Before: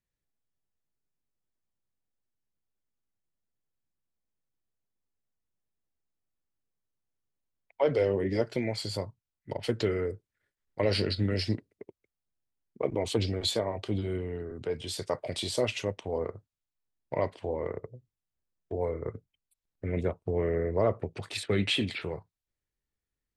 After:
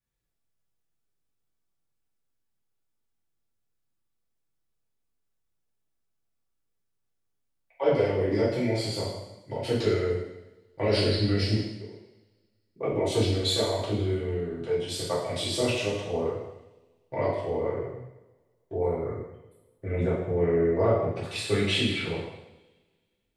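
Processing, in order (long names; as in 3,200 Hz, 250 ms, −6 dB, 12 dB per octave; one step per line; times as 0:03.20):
coupled-rooms reverb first 0.91 s, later 2.3 s, from −26 dB, DRR −9.5 dB
level −6 dB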